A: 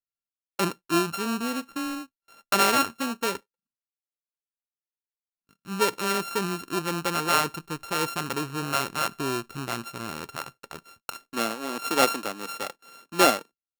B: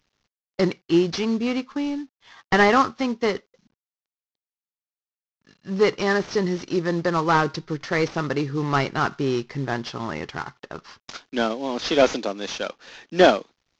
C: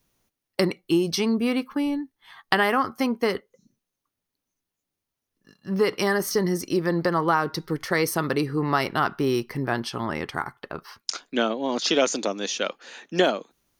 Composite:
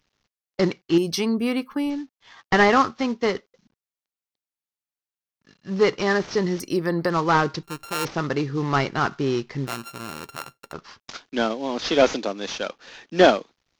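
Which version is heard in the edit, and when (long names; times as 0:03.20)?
B
0:00.98–0:01.90: punch in from C
0:06.60–0:07.10: punch in from C
0:07.63–0:08.05: punch in from A
0:09.67–0:10.73: punch in from A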